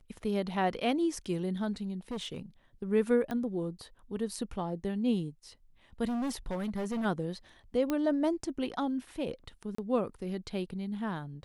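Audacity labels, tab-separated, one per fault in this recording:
2.110000	2.390000	clipping −32.5 dBFS
3.310000	3.310000	click −23 dBFS
6.070000	7.060000	clipping −30.5 dBFS
7.900000	7.900000	click −18 dBFS
9.750000	9.780000	drop-out 34 ms

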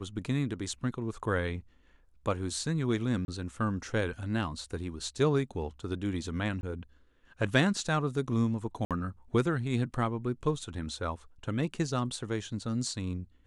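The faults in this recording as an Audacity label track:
3.250000	3.280000	drop-out 31 ms
6.610000	6.630000	drop-out 21 ms
8.850000	8.910000	drop-out 57 ms

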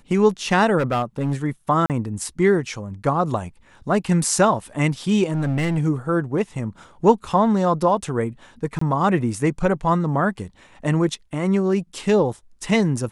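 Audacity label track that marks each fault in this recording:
0.780000	1.340000	clipping −16.5 dBFS
1.860000	1.900000	drop-out 38 ms
5.320000	5.790000	clipping −18 dBFS
8.790000	8.810000	drop-out 24 ms

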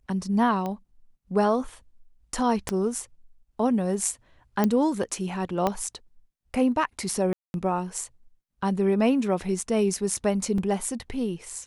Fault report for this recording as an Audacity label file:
0.660000	0.660000	click −19 dBFS
2.690000	2.690000	click −12 dBFS
4.640000	4.640000	click −10 dBFS
5.670000	5.670000	click −11 dBFS
7.330000	7.540000	drop-out 211 ms
10.580000	10.580000	drop-out 3 ms

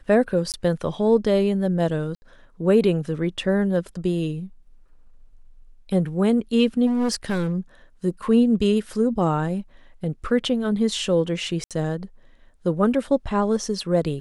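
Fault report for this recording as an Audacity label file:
0.520000	0.540000	drop-out 18 ms
2.150000	2.220000	drop-out 70 ms
6.860000	7.540000	clipping −19 dBFS
11.640000	11.710000	drop-out 67 ms

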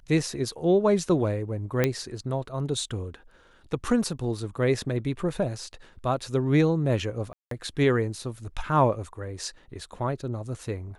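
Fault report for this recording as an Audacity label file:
1.840000	1.840000	click −9 dBFS
7.330000	7.510000	drop-out 183 ms

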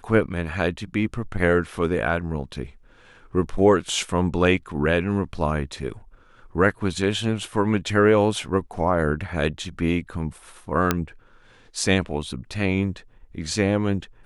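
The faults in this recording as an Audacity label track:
10.910000	10.910000	click −4 dBFS

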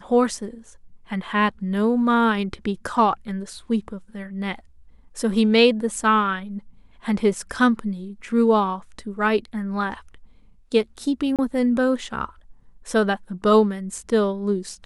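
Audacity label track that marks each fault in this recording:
11.360000	11.390000	drop-out 27 ms

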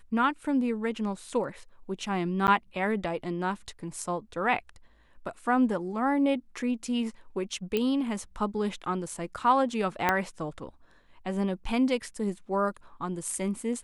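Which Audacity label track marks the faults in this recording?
2.470000	2.480000	drop-out 9.9 ms
7.770000	7.770000	click −15 dBFS
10.090000	10.090000	click −9 dBFS

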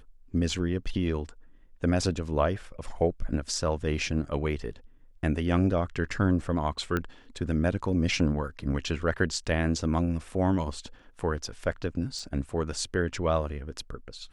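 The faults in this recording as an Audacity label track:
6.970000	6.970000	click −16 dBFS
12.190000	12.190000	drop-out 3.2 ms

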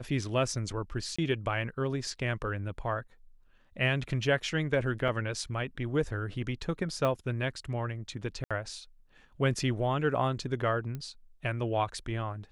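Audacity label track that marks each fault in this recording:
1.160000	1.190000	drop-out 25 ms
5.080000	5.080000	drop-out 4.6 ms
7.050000	7.050000	click −18 dBFS
8.440000	8.510000	drop-out 66 ms
10.950000	10.950000	click −25 dBFS

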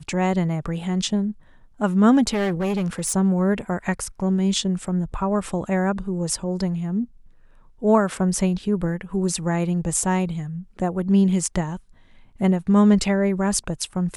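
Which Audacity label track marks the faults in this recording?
2.330000	3.130000	clipping −19.5 dBFS

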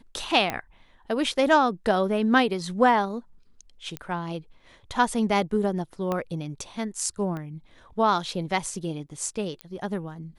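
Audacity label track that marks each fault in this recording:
0.500000	0.500000	click −13 dBFS
3.970000	3.970000	click −17 dBFS
6.120000	6.120000	click −15 dBFS
7.370000	7.370000	click −23 dBFS
9.610000	9.610000	click −21 dBFS

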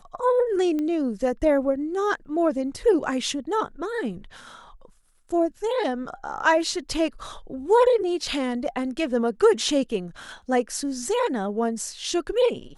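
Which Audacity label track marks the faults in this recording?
0.790000	0.790000	click −18 dBFS

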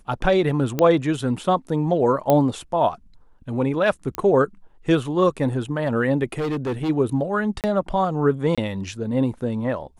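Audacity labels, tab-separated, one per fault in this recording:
0.790000	0.790000	click −8 dBFS
2.300000	2.300000	click −6 dBFS
4.150000	4.150000	click −12 dBFS
6.380000	6.900000	clipping −21.5 dBFS
7.610000	7.640000	drop-out 28 ms
8.550000	8.580000	drop-out 26 ms

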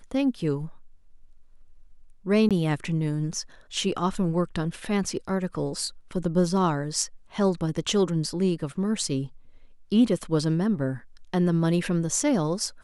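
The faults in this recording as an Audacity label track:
2.490000	2.510000	drop-out 17 ms

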